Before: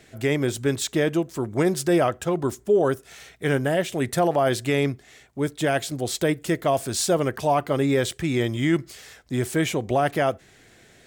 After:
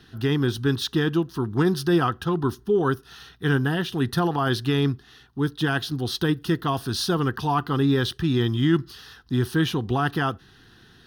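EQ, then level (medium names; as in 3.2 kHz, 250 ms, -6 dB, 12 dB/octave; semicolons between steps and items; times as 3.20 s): treble shelf 11 kHz -8.5 dB; static phaser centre 2.2 kHz, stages 6; +4.5 dB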